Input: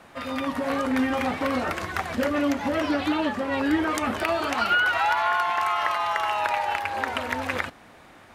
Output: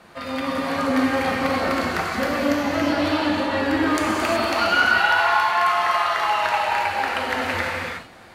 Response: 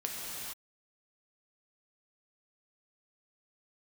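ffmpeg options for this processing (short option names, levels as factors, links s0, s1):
-filter_complex "[0:a]equalizer=f=4400:w=7.9:g=8[s0];[1:a]atrim=start_sample=2205,afade=t=out:st=0.35:d=0.01,atrim=end_sample=15876,asetrate=34839,aresample=44100[s1];[s0][s1]afir=irnorm=-1:irlink=0"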